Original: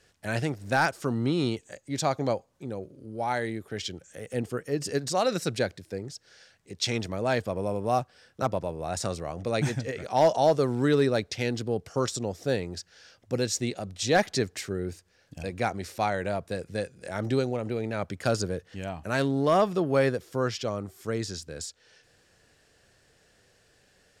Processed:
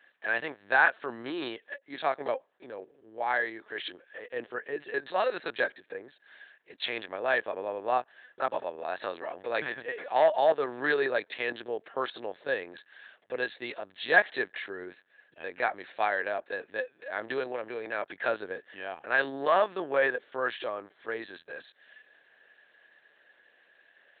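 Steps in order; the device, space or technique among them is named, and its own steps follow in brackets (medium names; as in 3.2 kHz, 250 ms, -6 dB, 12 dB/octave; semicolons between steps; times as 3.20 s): talking toy (LPC vocoder at 8 kHz pitch kept; high-pass 510 Hz 12 dB/octave; peaking EQ 1.7 kHz +10.5 dB 0.26 oct)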